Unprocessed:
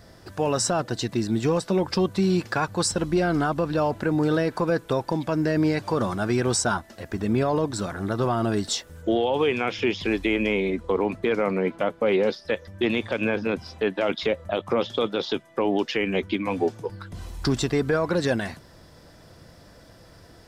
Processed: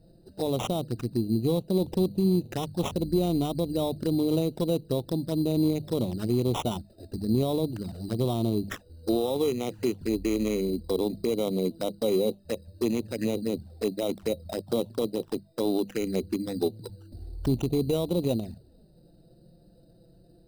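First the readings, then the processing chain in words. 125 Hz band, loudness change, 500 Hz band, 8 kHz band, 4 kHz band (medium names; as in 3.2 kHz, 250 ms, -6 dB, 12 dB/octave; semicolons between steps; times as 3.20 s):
-1.5 dB, -3.5 dB, -4.0 dB, -11.0 dB, -6.5 dB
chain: local Wiener filter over 41 samples; peaking EQ 1.7 kHz -9 dB 1.8 oct; hum notches 50/100/150/200 Hz; sample-and-hold 10×; touch-sensitive flanger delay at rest 6.9 ms, full sweep at -24 dBFS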